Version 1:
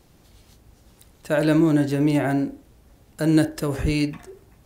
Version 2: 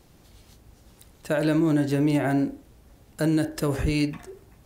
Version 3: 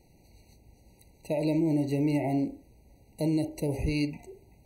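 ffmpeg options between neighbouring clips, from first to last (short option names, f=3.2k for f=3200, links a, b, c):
-af "alimiter=limit=-14.5dB:level=0:latency=1:release=140"
-af "afftfilt=real='re*eq(mod(floor(b*sr/1024/960),2),0)':imag='im*eq(mod(floor(b*sr/1024/960),2),0)':win_size=1024:overlap=0.75,volume=-4.5dB"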